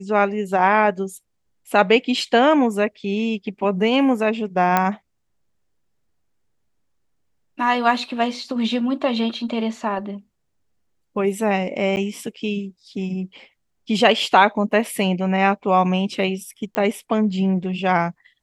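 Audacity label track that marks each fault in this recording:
4.770000	4.770000	click −4 dBFS
11.960000	11.970000	drop-out 9.5 ms
16.750000	16.750000	click −9 dBFS

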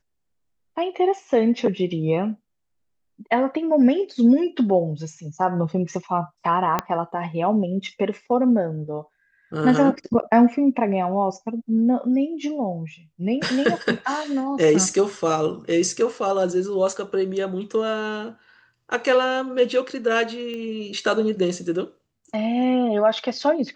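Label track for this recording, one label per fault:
6.790000	6.790000	click −7 dBFS
20.540000	20.540000	click −22 dBFS

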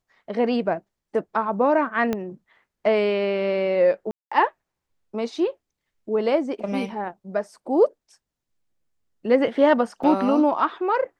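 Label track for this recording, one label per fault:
2.130000	2.130000	click −12 dBFS
4.110000	4.320000	drop-out 205 ms
10.030000	10.040000	drop-out 5.1 ms

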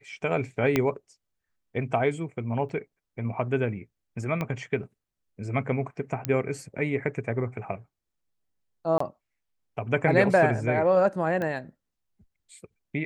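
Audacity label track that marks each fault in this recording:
0.760000	0.760000	click −9 dBFS
2.690000	2.690000	drop-out 2.2 ms
4.410000	4.410000	click −17 dBFS
6.250000	6.250000	click −11 dBFS
8.980000	9.000000	drop-out 24 ms
11.420000	11.420000	click −19 dBFS

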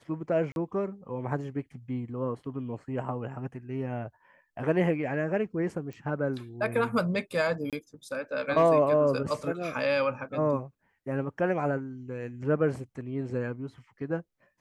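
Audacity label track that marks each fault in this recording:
0.520000	0.560000	drop-out 41 ms
5.930000	5.930000	click −30 dBFS
7.700000	7.730000	drop-out 27 ms

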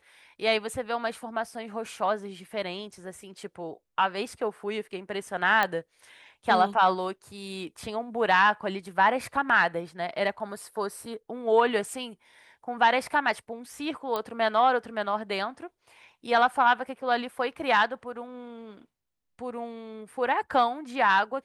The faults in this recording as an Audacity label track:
5.630000	5.630000	click −12 dBFS
14.160000	14.160000	click −16 dBFS

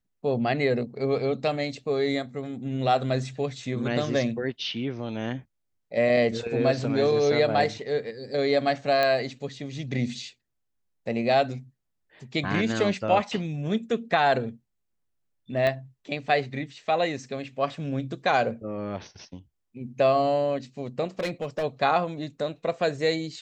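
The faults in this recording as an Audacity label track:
9.030000	9.030000	click −13 dBFS
15.670000	15.670000	click −15 dBFS
21.190000	21.640000	clipping −24 dBFS

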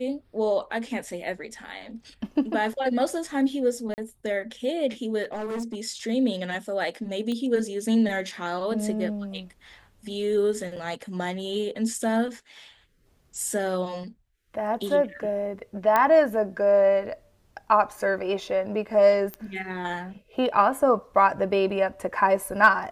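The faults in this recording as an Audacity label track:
3.940000	3.980000	drop-out 39 ms
5.230000	5.760000	clipping −27.5 dBFS
7.320000	7.320000	click −20 dBFS
10.760000	10.770000	drop-out 5.6 ms
15.960000	15.960000	click −9 dBFS
19.340000	19.340000	click −18 dBFS

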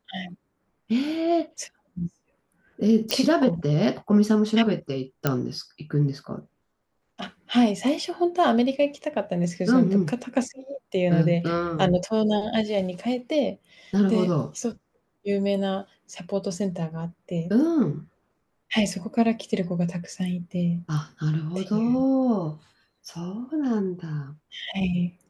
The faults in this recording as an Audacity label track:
3.110000	3.110000	click −7 dBFS
5.270000	5.270000	click −7 dBFS

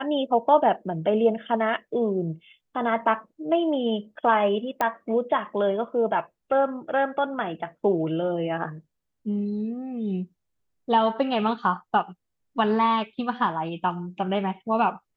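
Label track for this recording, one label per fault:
4.810000	4.810000	click −12 dBFS

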